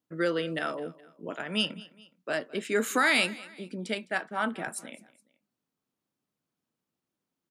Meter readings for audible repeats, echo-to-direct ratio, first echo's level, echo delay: 2, −19.5 dB, −20.5 dB, 209 ms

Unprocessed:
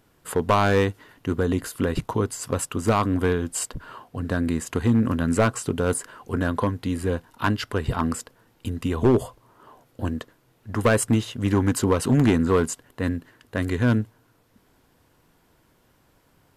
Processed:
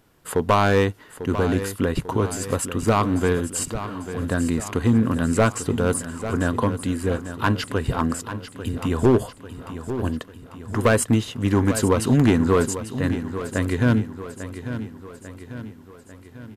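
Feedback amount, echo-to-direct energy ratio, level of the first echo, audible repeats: 53%, −10.0 dB, −11.5 dB, 5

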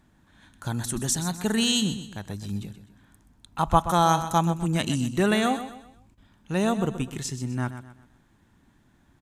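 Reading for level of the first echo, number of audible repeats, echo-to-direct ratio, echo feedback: −11.5 dB, 3, −11.0 dB, 37%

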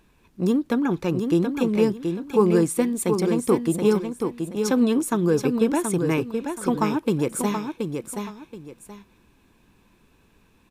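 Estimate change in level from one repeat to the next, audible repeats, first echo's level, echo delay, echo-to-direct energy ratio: −11.5 dB, 2, −6.0 dB, 727 ms, −5.5 dB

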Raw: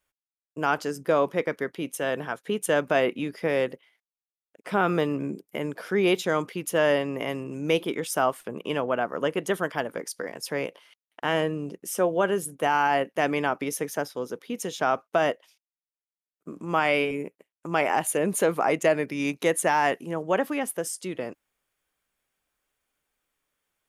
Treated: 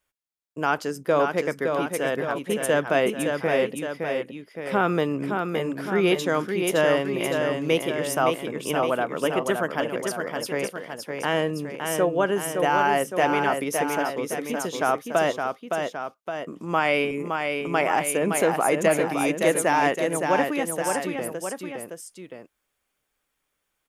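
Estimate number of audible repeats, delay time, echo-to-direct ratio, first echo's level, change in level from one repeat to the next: 2, 565 ms, −3.5 dB, −5.0 dB, −4.5 dB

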